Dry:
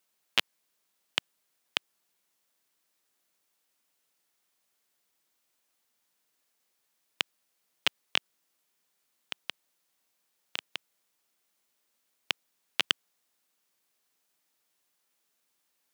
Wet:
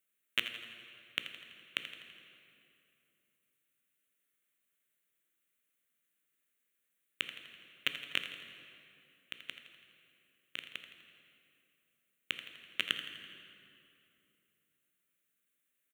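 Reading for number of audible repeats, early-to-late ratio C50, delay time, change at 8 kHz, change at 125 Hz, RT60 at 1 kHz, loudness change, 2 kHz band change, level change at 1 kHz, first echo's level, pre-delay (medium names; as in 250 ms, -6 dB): 3, 6.5 dB, 83 ms, -9.5 dB, -3.5 dB, 2.7 s, -6.5 dB, -3.5 dB, -10.0 dB, -12.0 dB, 11 ms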